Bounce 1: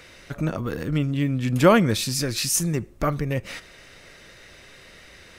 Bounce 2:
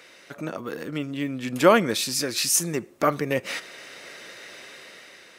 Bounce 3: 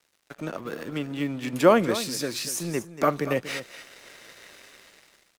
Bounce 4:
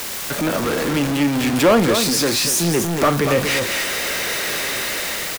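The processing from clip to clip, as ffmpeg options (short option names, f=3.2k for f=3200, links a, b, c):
-af "highpass=280,dynaudnorm=f=460:g=5:m=10dB,volume=-2dB"
-filter_complex "[0:a]acrossover=split=170|1100[a][b][c];[c]alimiter=limit=-20dB:level=0:latency=1:release=194[d];[a][b][d]amix=inputs=3:normalize=0,aeval=exprs='sgn(val(0))*max(abs(val(0))-0.00562,0)':c=same,aecho=1:1:237:0.224"
-filter_complex "[0:a]aeval=exprs='val(0)+0.5*0.0794*sgn(val(0))':c=same,asplit=2[a][b];[b]adelay=35,volume=-13dB[c];[a][c]amix=inputs=2:normalize=0,asoftclip=type=tanh:threshold=-13.5dB,volume=5.5dB"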